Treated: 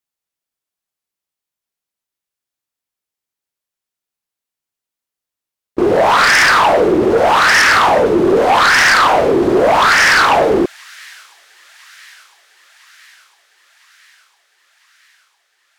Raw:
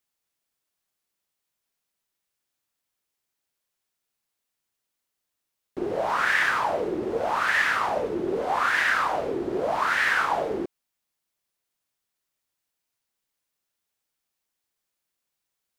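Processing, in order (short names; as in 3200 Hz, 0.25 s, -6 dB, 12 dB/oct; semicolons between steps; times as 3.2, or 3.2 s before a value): gate with hold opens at -26 dBFS; thin delay 1.005 s, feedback 63%, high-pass 4300 Hz, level -17.5 dB; sine folder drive 12 dB, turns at -8.5 dBFS; gain +2 dB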